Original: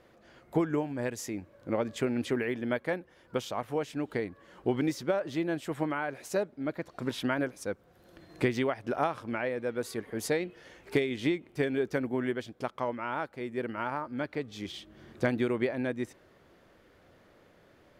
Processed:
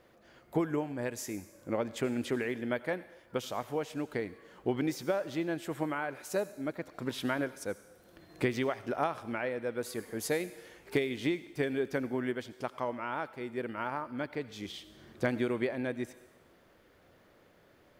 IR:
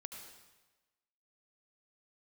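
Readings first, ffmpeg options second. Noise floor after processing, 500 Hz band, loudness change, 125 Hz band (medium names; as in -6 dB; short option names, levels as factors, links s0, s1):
-63 dBFS, -2.5 dB, -2.5 dB, -3.0 dB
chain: -filter_complex "[0:a]asplit=2[s0][s1];[s1]aemphasis=mode=production:type=bsi[s2];[1:a]atrim=start_sample=2205[s3];[s2][s3]afir=irnorm=-1:irlink=0,volume=0.422[s4];[s0][s4]amix=inputs=2:normalize=0,volume=0.668"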